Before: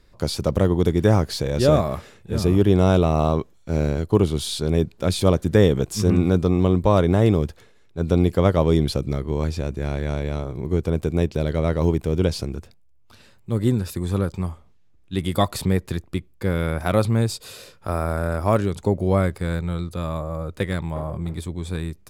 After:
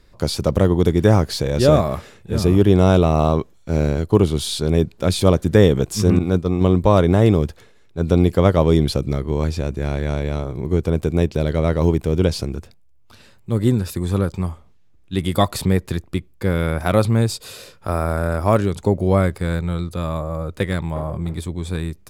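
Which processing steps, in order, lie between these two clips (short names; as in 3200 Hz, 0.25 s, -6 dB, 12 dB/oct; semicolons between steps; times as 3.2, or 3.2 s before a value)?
6.19–6.61 expander -13 dBFS; gain +3 dB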